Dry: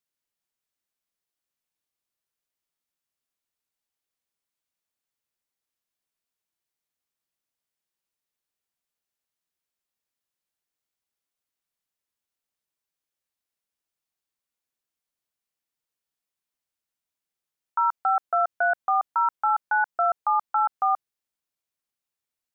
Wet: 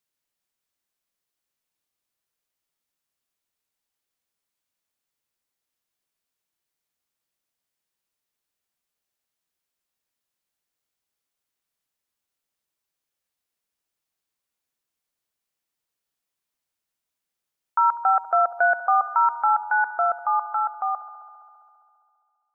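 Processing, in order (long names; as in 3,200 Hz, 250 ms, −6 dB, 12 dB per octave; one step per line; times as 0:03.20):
fade-out on the ending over 3.37 s
delay with a band-pass on its return 67 ms, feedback 82%, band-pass 740 Hz, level −16.5 dB
level +3.5 dB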